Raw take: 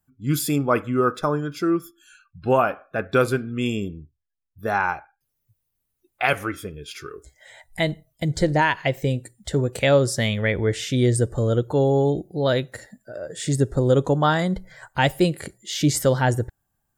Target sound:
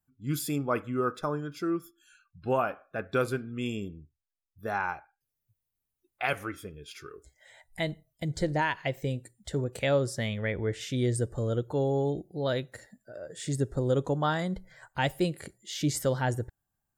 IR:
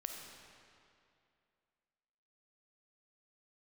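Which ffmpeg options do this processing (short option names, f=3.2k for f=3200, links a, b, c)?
-filter_complex "[0:a]asettb=1/sr,asplit=3[a][b][c];[a]atrim=end=9.644[d];[b]atrim=start=9.64:end=10.81,asetpts=PTS-STARTPTS,afade=t=in:d=0.004:c=qsin,afade=t=out:st=1.166:d=0.004:c=qsin,adynamicequalizer=threshold=0.0126:dfrequency=2700:dqfactor=0.7:tfrequency=2700:tqfactor=0.7:attack=5:release=100:ratio=0.375:range=3:mode=cutabove:tftype=highshelf[e];[c]atrim=start=10.806[f];[d][e]acrossfade=d=0.004:c1=hsin:c2=qsin[g];[g][f]acrossfade=d=0.004:c1=qsin:c2=hsin,volume=-8.5dB"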